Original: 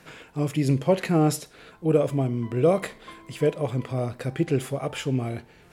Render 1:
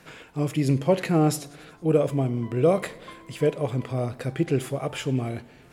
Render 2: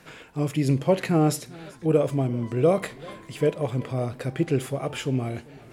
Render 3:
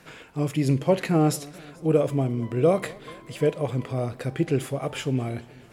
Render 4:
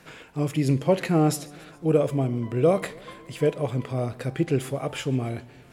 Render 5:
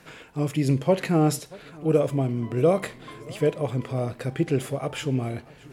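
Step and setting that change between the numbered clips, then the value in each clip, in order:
warbling echo, time: 93, 390, 217, 139, 629 ms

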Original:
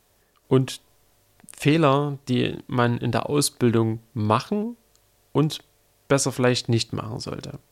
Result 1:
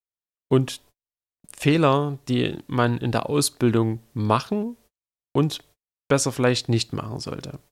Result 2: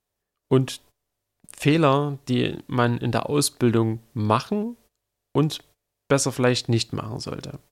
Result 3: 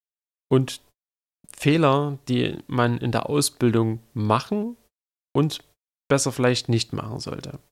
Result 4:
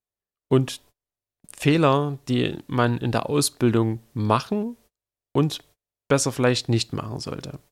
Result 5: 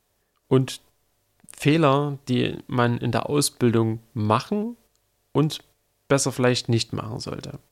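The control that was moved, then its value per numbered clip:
gate, range: -45, -19, -59, -32, -7 dB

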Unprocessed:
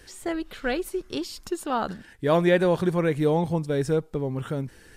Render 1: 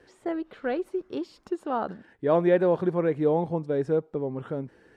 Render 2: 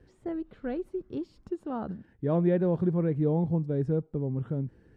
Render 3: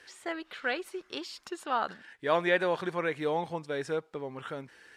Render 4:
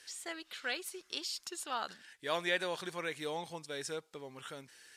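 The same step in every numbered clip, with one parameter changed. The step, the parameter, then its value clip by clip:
band-pass, frequency: 490, 140, 1800, 5200 Hz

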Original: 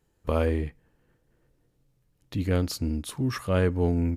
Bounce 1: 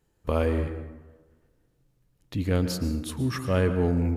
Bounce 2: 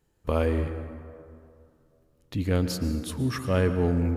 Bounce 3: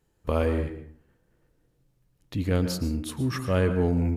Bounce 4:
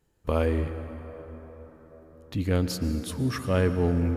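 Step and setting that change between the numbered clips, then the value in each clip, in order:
plate-style reverb, RT60: 1.2, 2.4, 0.55, 5 s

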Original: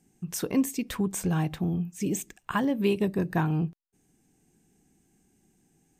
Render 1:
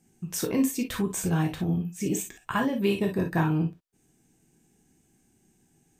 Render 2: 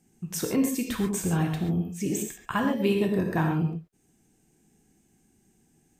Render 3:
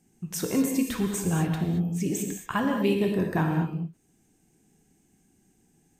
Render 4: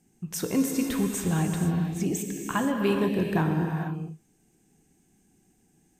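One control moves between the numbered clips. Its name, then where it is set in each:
non-linear reverb, gate: 80, 160, 250, 510 ms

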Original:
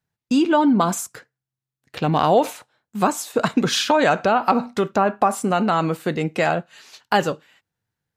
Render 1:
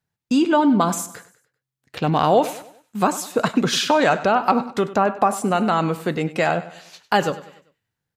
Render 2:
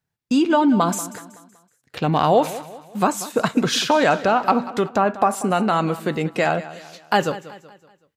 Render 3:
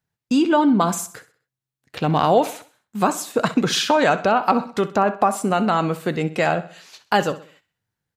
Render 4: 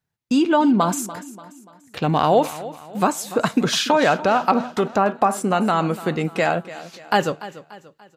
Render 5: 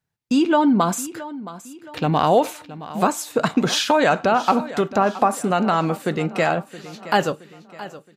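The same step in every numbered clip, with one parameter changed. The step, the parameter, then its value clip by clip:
feedback echo, time: 98, 188, 64, 291, 670 ms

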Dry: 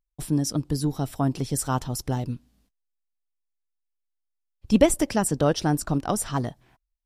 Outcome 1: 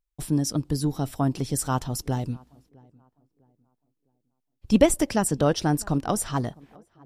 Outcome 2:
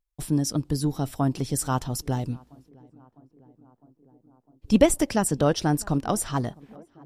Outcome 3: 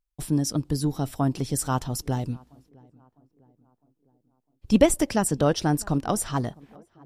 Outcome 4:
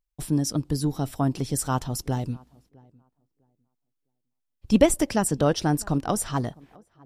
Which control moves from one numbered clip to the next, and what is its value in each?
tape echo, feedback: 39, 86, 58, 22%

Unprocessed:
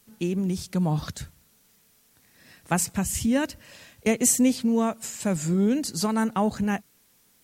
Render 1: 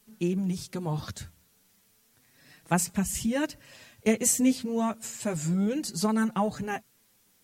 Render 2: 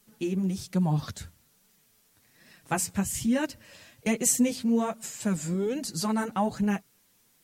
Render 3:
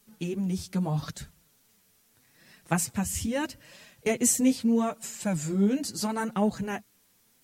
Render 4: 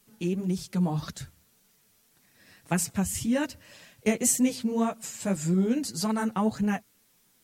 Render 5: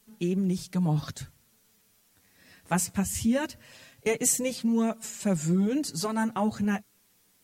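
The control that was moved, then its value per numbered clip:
flange, rate: 0.33, 1.2, 0.78, 1.8, 0.2 Hz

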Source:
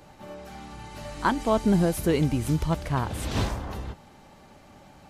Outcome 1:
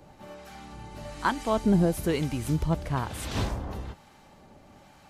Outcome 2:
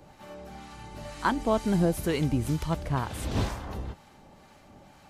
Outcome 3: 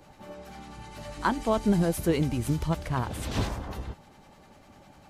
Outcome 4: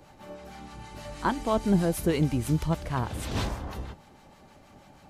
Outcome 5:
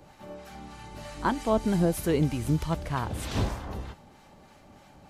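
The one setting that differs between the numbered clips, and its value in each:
harmonic tremolo, rate: 1.1, 2.1, 10, 6.3, 3.2 Hz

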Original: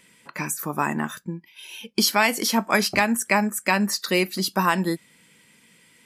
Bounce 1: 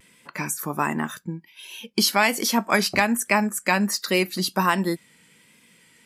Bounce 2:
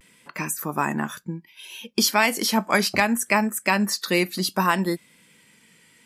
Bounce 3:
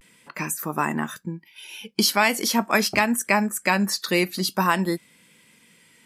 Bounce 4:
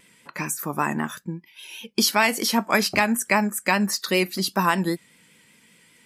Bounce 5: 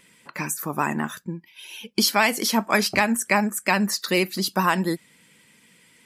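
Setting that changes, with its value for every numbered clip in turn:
vibrato, rate: 1.3, 0.65, 0.43, 5.1, 15 Hz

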